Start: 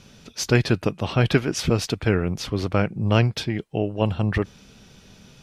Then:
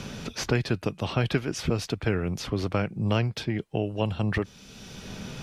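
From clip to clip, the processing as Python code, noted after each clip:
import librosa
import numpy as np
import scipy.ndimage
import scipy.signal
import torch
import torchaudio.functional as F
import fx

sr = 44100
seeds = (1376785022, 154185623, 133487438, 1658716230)

y = fx.band_squash(x, sr, depth_pct=70)
y = y * librosa.db_to_amplitude(-5.5)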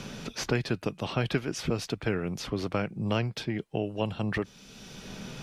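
y = fx.peak_eq(x, sr, hz=79.0, db=-10.5, octaves=0.64)
y = y * librosa.db_to_amplitude(-2.0)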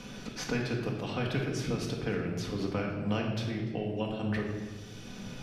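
y = x + 10.0 ** (-21.0 / 20.0) * np.pad(x, (int(293 * sr / 1000.0), 0))[:len(x)]
y = fx.room_shoebox(y, sr, seeds[0], volume_m3=1100.0, walls='mixed', distance_m=1.9)
y = y * librosa.db_to_amplitude(-6.5)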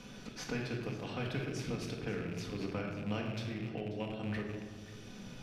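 y = fx.rattle_buzz(x, sr, strikes_db=-34.0, level_db=-33.0)
y = y + 10.0 ** (-16.0 / 20.0) * np.pad(y, (int(537 * sr / 1000.0), 0))[:len(y)]
y = y * librosa.db_to_amplitude(-6.0)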